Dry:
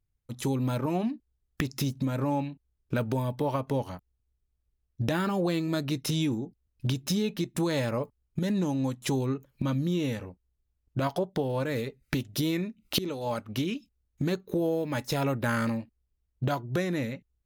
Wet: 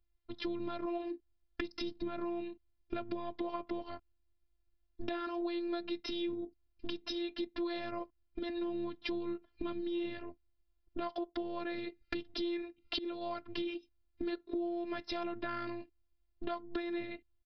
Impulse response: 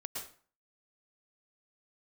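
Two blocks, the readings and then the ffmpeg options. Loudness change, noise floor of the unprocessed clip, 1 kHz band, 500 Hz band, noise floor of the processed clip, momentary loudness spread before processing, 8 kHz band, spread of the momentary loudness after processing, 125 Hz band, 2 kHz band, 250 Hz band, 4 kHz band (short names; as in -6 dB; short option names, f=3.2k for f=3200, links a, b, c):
-9.5 dB, -79 dBFS, -8.0 dB, -8.0 dB, -76 dBFS, 7 LU, under -25 dB, 9 LU, -27.5 dB, -8.5 dB, -8.5 dB, -7.0 dB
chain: -af "aresample=11025,aresample=44100,afftfilt=real='hypot(re,im)*cos(PI*b)':imag='0':win_size=512:overlap=0.75,acompressor=threshold=-40dB:ratio=3,volume=3.5dB"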